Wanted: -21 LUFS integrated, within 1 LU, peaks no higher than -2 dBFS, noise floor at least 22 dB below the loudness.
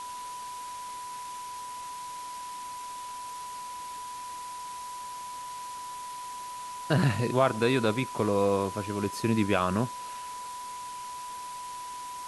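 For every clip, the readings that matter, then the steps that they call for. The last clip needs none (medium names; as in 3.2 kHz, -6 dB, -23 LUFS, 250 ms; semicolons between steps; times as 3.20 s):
steady tone 990 Hz; tone level -37 dBFS; noise floor -40 dBFS; noise floor target -54 dBFS; loudness -32.0 LUFS; peak level -10.0 dBFS; loudness target -21.0 LUFS
-> band-stop 990 Hz, Q 30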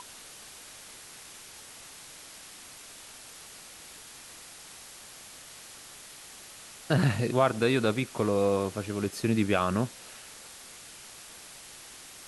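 steady tone not found; noise floor -48 dBFS; noise floor target -50 dBFS
-> noise reduction 6 dB, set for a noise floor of -48 dBFS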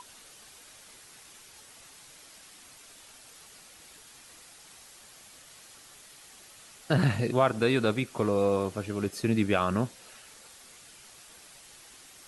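noise floor -53 dBFS; loudness -27.5 LUFS; peak level -10.0 dBFS; loudness target -21.0 LUFS
-> trim +6.5 dB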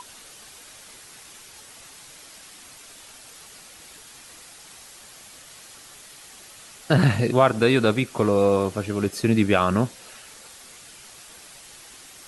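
loudness -21.0 LUFS; peak level -3.5 dBFS; noise floor -46 dBFS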